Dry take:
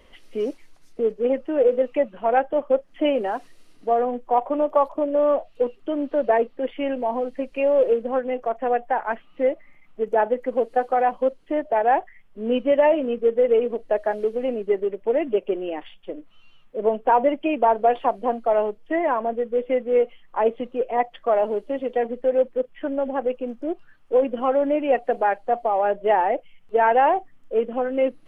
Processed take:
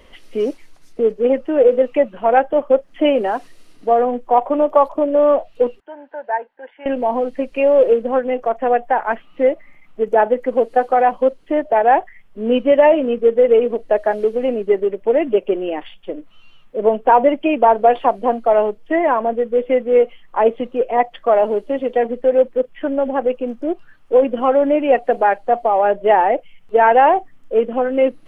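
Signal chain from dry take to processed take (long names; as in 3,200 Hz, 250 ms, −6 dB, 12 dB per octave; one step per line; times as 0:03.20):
0:05.80–0:06.86: pair of resonant band-passes 1,200 Hz, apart 0.78 octaves
level +6 dB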